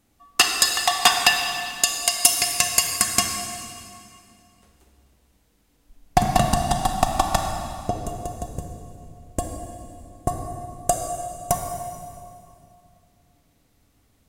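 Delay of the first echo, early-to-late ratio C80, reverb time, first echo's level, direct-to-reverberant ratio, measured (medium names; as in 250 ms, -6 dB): no echo, 4.5 dB, 2.5 s, no echo, 3.0 dB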